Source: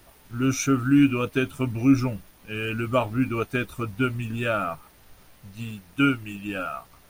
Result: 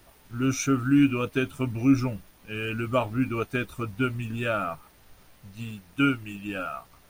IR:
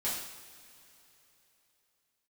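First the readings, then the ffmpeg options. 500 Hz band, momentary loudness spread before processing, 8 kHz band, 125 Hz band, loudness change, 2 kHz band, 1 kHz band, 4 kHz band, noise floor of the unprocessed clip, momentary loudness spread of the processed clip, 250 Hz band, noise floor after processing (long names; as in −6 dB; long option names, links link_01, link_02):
−2.0 dB, 15 LU, −2.0 dB, −2.0 dB, −2.0 dB, −2.0 dB, −2.0 dB, −2.0 dB, −54 dBFS, 15 LU, −2.0 dB, −57 dBFS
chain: -af "equalizer=frequency=12000:width_type=o:width=0.38:gain=-3,volume=-2dB"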